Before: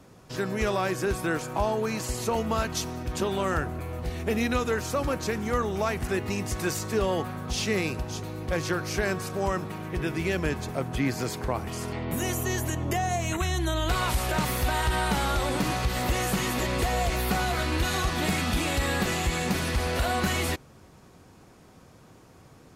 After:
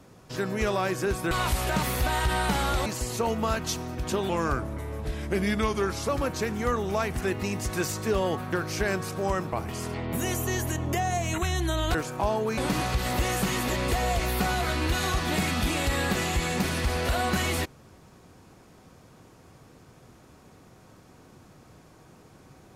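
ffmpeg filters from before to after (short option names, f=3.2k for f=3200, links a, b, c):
-filter_complex "[0:a]asplit=9[a][b][c][d][e][f][g][h][i];[a]atrim=end=1.312[j];[b]atrim=start=13.928:end=15.482[k];[c]atrim=start=1.938:end=3.374[l];[d]atrim=start=3.37:end=4.95,asetpts=PTS-STARTPTS,asetrate=38808,aresample=44100[m];[e]atrim=start=4.946:end=7.392[n];[f]atrim=start=8.698:end=9.702[o];[g]atrim=start=11.508:end=13.932[p];[h]atrim=start=1.308:end=1.942[q];[i]atrim=start=15.478[r];[j][k]acrossfade=d=0.004:c1=hsin:c2=hsin[s];[s][l]acrossfade=d=0.004:c1=hsin:c2=hsin[t];[t][m]acrossfade=d=0.004:c1=hsin:c2=hsin[u];[u][n]acrossfade=d=0.004:c1=hsin:c2=hsin[v];[v][o]acrossfade=d=0.004:c1=hsin:c2=hsin[w];[w][p]acrossfade=d=0.004:c1=hsin:c2=hsin[x];[x][q]acrossfade=d=0.004:c1=hsin:c2=hsin[y];[y][r]acrossfade=d=0.004:c1=hsin:c2=hsin"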